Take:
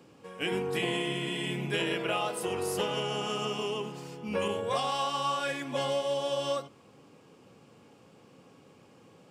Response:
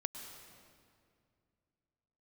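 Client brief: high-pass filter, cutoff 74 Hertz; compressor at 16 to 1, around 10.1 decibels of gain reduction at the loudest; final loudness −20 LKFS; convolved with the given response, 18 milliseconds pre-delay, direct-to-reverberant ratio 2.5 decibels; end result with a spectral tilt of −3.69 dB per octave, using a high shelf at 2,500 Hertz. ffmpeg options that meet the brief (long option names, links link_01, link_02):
-filter_complex "[0:a]highpass=74,highshelf=frequency=2500:gain=-8.5,acompressor=threshold=-37dB:ratio=16,asplit=2[link_01][link_02];[1:a]atrim=start_sample=2205,adelay=18[link_03];[link_02][link_03]afir=irnorm=-1:irlink=0,volume=-2dB[link_04];[link_01][link_04]amix=inputs=2:normalize=0,volume=19.5dB"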